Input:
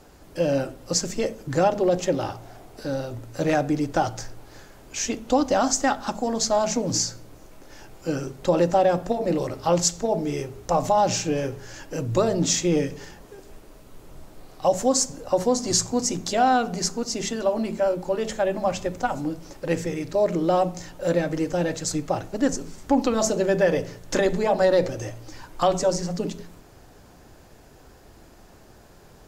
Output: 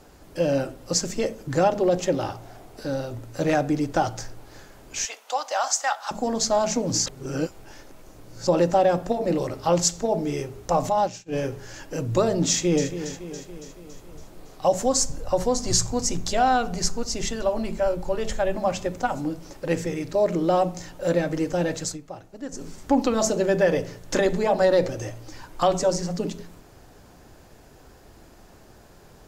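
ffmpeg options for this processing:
-filter_complex "[0:a]asettb=1/sr,asplit=3[s0][s1][s2];[s0]atrim=end=5.054[s3];[s1]atrim=start=5.05:end=6.11,asetpts=PTS-STARTPTS,afade=t=in:d=0.004:c=qsin,afade=t=out:st=1.056:d=0.004:c=qsin,highpass=f=690:w=0.5412,highpass=f=690:w=1.3066[s4];[s2]atrim=start=6.106[s5];[s3][s4]acrossfade=d=0.004:c1=hsin:c2=qsin[s6];[s6][s5]acrossfade=d=0.004:c1=qsin:c2=hsin,asplit=3[s7][s8][s9];[s7]afade=t=out:st=10.89:d=0.02[s10];[s8]agate=range=0.0224:threshold=0.158:ratio=3:release=100:detection=peak,afade=t=in:st=10.89:d=0.02,afade=t=out:st=11.32:d=0.02[s11];[s9]afade=t=in:st=11.32:d=0.02[s12];[s10][s11][s12]amix=inputs=3:normalize=0,asplit=2[s13][s14];[s14]afade=t=in:st=12.49:d=0.01,afade=t=out:st=12.91:d=0.01,aecho=0:1:280|560|840|1120|1400|1680|1960:0.266073|0.159644|0.0957861|0.0574717|0.034483|0.0206898|0.0124139[s15];[s13][s15]amix=inputs=2:normalize=0,asplit=3[s16][s17][s18];[s16]afade=t=out:st=14.85:d=0.02[s19];[s17]asubboost=boost=5.5:cutoff=94,afade=t=in:st=14.85:d=0.02,afade=t=out:st=18.55:d=0.02[s20];[s18]afade=t=in:st=18.55:d=0.02[s21];[s19][s20][s21]amix=inputs=3:normalize=0,asplit=5[s22][s23][s24][s25][s26];[s22]atrim=end=7.062[s27];[s23]atrim=start=7.058:end=8.472,asetpts=PTS-STARTPTS,areverse[s28];[s24]atrim=start=8.468:end=21.98,asetpts=PTS-STARTPTS,afade=t=out:st=13.372:d=0.14:silence=0.223872[s29];[s25]atrim=start=21.98:end=22.51,asetpts=PTS-STARTPTS,volume=0.224[s30];[s26]atrim=start=22.51,asetpts=PTS-STARTPTS,afade=t=in:d=0.14:silence=0.223872[s31];[s27][s28]acrossfade=d=0.004:c1=hsin:c2=hsin[s32];[s29][s30][s31]concat=n=3:v=0:a=1[s33];[s32][s33]acrossfade=d=0.004:c1=hsin:c2=hsin"

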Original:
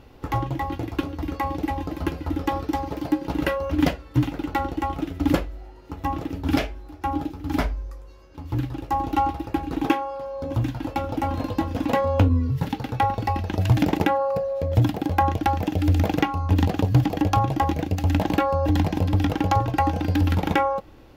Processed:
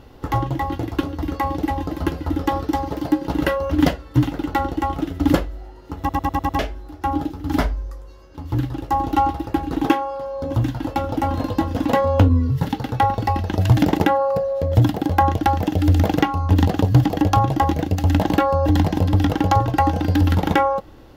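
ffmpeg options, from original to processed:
-filter_complex "[0:a]asplit=7[s0][s1][s2][s3][s4][s5][s6];[s0]atrim=end=6.092[s7];[s1]atrim=start=5.988:end=6.092[s8];[s2]atrim=start=5.988:end=6.092[s9];[s3]atrim=start=5.988:end=6.092[s10];[s4]atrim=start=5.988:end=6.092[s11];[s5]atrim=start=5.988:end=6.092[s12];[s6]atrim=start=6.588[s13];[s7][s8]acrossfade=d=0.004:c1=hsin:c2=hsin[s14];[s14][s9]acrossfade=d=0.004:c1=hsin:c2=hsin[s15];[s15][s10]acrossfade=d=0.004:c1=hsin:c2=hsin[s16];[s16][s11]acrossfade=d=0.004:c1=hsin:c2=hsin[s17];[s17][s12]acrossfade=d=0.004:c1=hsin:c2=hsin[s18];[s18][s13]acrossfade=d=0.004:c1=hsin:c2=hsin,equalizer=f=2400:w=6.4:g=-7,volume=1.58"

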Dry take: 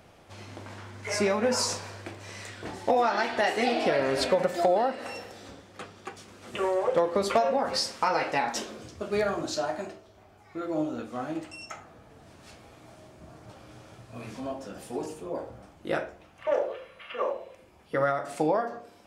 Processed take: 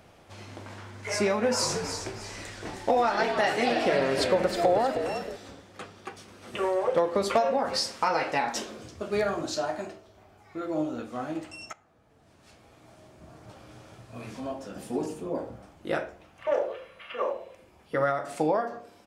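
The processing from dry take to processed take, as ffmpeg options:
-filter_complex "[0:a]asplit=3[s0][s1][s2];[s0]afade=t=out:st=1.61:d=0.02[s3];[s1]asplit=5[s4][s5][s6][s7][s8];[s5]adelay=315,afreqshift=-61,volume=0.398[s9];[s6]adelay=630,afreqshift=-122,volume=0.143[s10];[s7]adelay=945,afreqshift=-183,volume=0.0519[s11];[s8]adelay=1260,afreqshift=-244,volume=0.0186[s12];[s4][s9][s10][s11][s12]amix=inputs=5:normalize=0,afade=t=in:st=1.61:d=0.02,afade=t=out:st=5.35:d=0.02[s13];[s2]afade=t=in:st=5.35:d=0.02[s14];[s3][s13][s14]amix=inputs=3:normalize=0,asettb=1/sr,asplit=3[s15][s16][s17];[s15]atrim=end=5.964[s18];[s16]atrim=start=5.96:end=7.01,asetpts=PTS-STARTPTS,afade=t=in:d=0.004:c=qsin,afade=t=out:st=1.046:d=0.004:c=qsin,bandreject=f=7200:w=10[s19];[s17]atrim=start=7.006[s20];[s18][s19]acrossfade=d=0.004:c1=hsin:c2=qsin[s21];[s21][s20]acrossfade=d=0.004:c1=qsin:c2=hsin,asettb=1/sr,asplit=3[s22][s23][s24];[s22]atrim=end=14.764[s25];[s23]atrim=start=14.76:end=15.56,asetpts=PTS-STARTPTS,afade=t=in:d=0.004:c=qsin,afade=t=out:st=0.796:d=0.004:c=qsin,equalizer=f=220:t=o:w=1.3:g=7.5[s26];[s24]atrim=start=15.556[s27];[s25][s26]acrossfade=d=0.004:c1=hsin:c2=qsin[s28];[s28][s27]acrossfade=d=0.004:c1=qsin:c2=hsin,asplit=2[s29][s30];[s29]atrim=end=11.73,asetpts=PTS-STARTPTS,afade=t=out:st=11.726:d=0.004:c=hsin:silence=0.149624[s31];[s30]atrim=start=11.73,asetpts=PTS-STARTPTS,afade=t=in:d=1.78:silence=0.149624[s32];[s31][s32]concat=n=2:v=0:a=1"

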